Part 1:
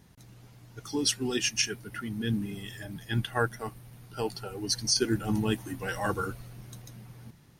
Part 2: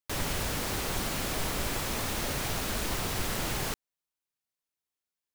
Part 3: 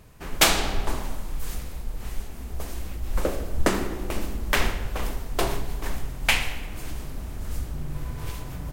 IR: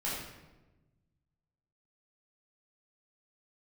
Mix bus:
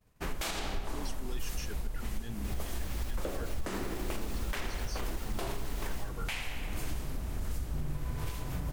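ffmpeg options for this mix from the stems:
-filter_complex "[0:a]volume=-7dB[a];[1:a]dynaudnorm=f=390:g=3:m=7dB,adelay=2350,volume=-14dB[b];[2:a]volume=1.5dB[c];[a][b]amix=inputs=2:normalize=0,alimiter=level_in=4.5dB:limit=-24dB:level=0:latency=1:release=22,volume=-4.5dB,volume=0dB[d];[c][d]amix=inputs=2:normalize=0,agate=range=-33dB:threshold=-37dB:ratio=3:detection=peak,alimiter=level_in=1dB:limit=-24dB:level=0:latency=1:release=399,volume=-1dB"

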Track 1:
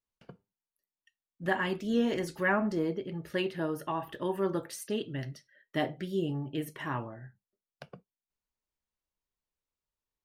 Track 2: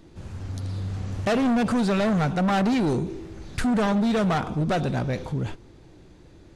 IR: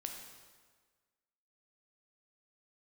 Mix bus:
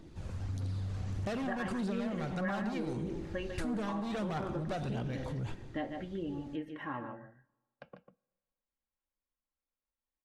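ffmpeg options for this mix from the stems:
-filter_complex "[0:a]lowpass=2.4k,aecho=1:1:3.7:0.51,volume=-5dB,asplit=3[a][b][c];[b]volume=-19.5dB[d];[c]volume=-8dB[e];[1:a]alimiter=limit=-23.5dB:level=0:latency=1:release=35,aphaser=in_gain=1:out_gain=1:delay=2:decay=0.34:speed=1.6:type=triangular,volume=-8.5dB,asplit=2[f][g];[g]volume=-3.5dB[h];[2:a]atrim=start_sample=2205[i];[d][h]amix=inputs=2:normalize=0[j];[j][i]afir=irnorm=-1:irlink=0[k];[e]aecho=0:1:146:1[l];[a][f][k][l]amix=inputs=4:normalize=0,acompressor=threshold=-34dB:ratio=3"

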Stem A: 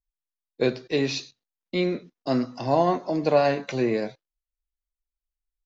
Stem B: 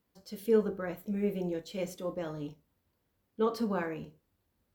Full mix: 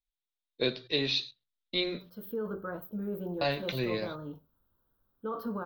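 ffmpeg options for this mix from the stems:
-filter_complex "[0:a]bandreject=f=60:t=h:w=6,bandreject=f=120:t=h:w=6,bandreject=f=180:t=h:w=6,asubboost=boost=6.5:cutoff=100,lowpass=f=3.7k:t=q:w=4.9,volume=-7dB,asplit=3[a][b][c];[a]atrim=end=2.18,asetpts=PTS-STARTPTS,afade=t=out:st=2.176:d=0.004:c=hsin[d];[b]atrim=start=2.18:end=3.41,asetpts=PTS-STARTPTS,volume=0[e];[c]atrim=start=3.41,asetpts=PTS-STARTPTS,afade=t=in:d=0.004:c=hsin[f];[d][e][f]concat=n=3:v=0:a=1[g];[1:a]firequalizer=gain_entry='entry(510,0);entry(1400,8);entry(2200,-21);entry(3200,-5);entry(7800,-24);entry(15000,12)':delay=0.05:min_phase=1,alimiter=level_in=0.5dB:limit=-24dB:level=0:latency=1:release=16,volume=-0.5dB,adelay=1850,volume=-2.5dB[h];[g][h]amix=inputs=2:normalize=0,bandreject=f=780:w=12"

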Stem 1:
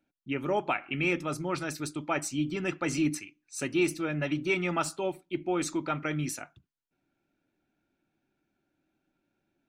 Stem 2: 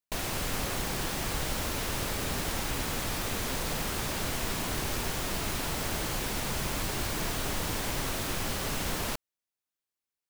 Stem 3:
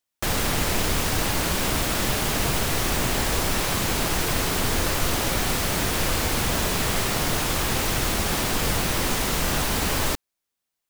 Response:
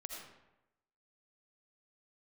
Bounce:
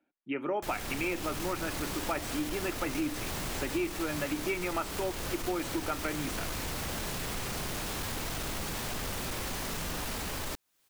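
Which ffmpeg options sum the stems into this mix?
-filter_complex "[0:a]acrossover=split=230 2800:gain=0.141 1 0.2[a][b][c];[a][b][c]amix=inputs=3:normalize=0,volume=2.5dB[d];[1:a]acompressor=mode=upward:threshold=-42dB:ratio=2.5,adelay=1000,volume=1dB[e];[2:a]adelay=400,volume=-5.5dB[f];[e][f]amix=inputs=2:normalize=0,asoftclip=type=tanh:threshold=-20.5dB,alimiter=level_in=4.5dB:limit=-24dB:level=0:latency=1:release=16,volume=-4.5dB,volume=0dB[g];[d][g]amix=inputs=2:normalize=0,acompressor=threshold=-30dB:ratio=3"

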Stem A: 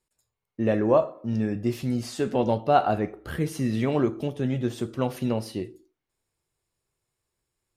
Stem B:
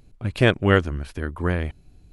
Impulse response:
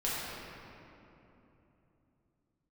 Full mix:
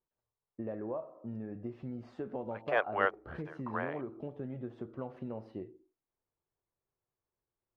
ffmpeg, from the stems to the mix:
-filter_complex "[0:a]acompressor=threshold=-27dB:ratio=10,volume=-4.5dB,asplit=2[a][b];[1:a]highpass=f=620:w=0.5412,highpass=f=620:w=1.3066,acontrast=49,adelay=2300,volume=-6dB[c];[b]apad=whole_len=195173[d];[c][d]sidechaingate=range=-33dB:threshold=-40dB:ratio=16:detection=peak[e];[a][e]amix=inputs=2:normalize=0,lowpass=1.1k,lowshelf=f=360:g=-7.5"

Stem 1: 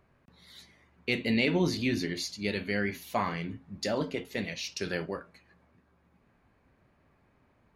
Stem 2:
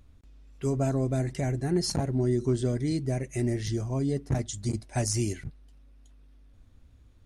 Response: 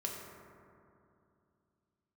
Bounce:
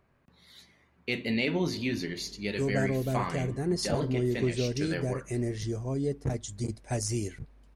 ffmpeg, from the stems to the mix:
-filter_complex "[0:a]volume=-2.5dB,asplit=2[a][b];[b]volume=-19.5dB[c];[1:a]equalizer=f=470:w=4.5:g=8,adelay=1950,volume=-3.5dB[d];[2:a]atrim=start_sample=2205[e];[c][e]afir=irnorm=-1:irlink=0[f];[a][d][f]amix=inputs=3:normalize=0"

